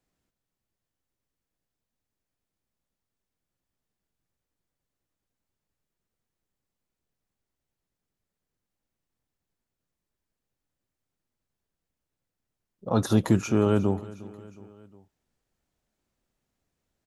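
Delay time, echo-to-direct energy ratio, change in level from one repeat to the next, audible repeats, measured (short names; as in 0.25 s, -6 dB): 0.36 s, -18.0 dB, -5.0 dB, 3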